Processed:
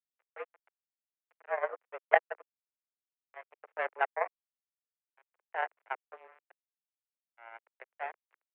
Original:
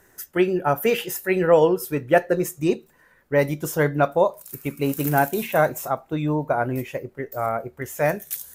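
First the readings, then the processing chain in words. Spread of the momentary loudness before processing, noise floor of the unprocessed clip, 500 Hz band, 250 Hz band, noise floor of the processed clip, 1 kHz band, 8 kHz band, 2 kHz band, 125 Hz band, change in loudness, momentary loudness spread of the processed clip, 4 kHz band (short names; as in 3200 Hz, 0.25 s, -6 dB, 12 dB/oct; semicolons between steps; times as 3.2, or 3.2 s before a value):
10 LU, -58 dBFS, -17.5 dB, under -40 dB, under -85 dBFS, -11.5 dB, under -40 dB, -10.0 dB, under -40 dB, -12.0 dB, 24 LU, -20.5 dB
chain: notch 1100 Hz, Q 6.6; in parallel at +1.5 dB: compressor 16:1, threshold -26 dBFS, peak gain reduction 16.5 dB; on the sum: tremolo 0.51 Hz, depth 92%; on a send: feedback echo 72 ms, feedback 34%, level -18.5 dB; on the sum: sample gate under -18 dBFS; power-law curve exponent 3; mistuned SSB +120 Hz 330–2200 Hz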